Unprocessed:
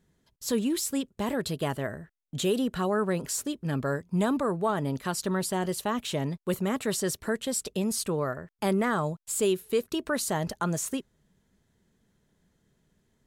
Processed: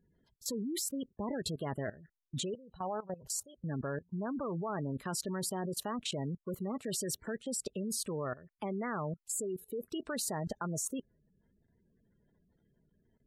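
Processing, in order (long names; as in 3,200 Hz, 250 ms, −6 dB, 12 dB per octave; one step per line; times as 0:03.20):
gate on every frequency bin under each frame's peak −20 dB strong
0:02.54–0:03.64: drawn EQ curve 110 Hz 0 dB, 290 Hz −20 dB, 830 Hz +2 dB, 2,100 Hz −26 dB, 3,500 Hz −2 dB
output level in coarse steps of 18 dB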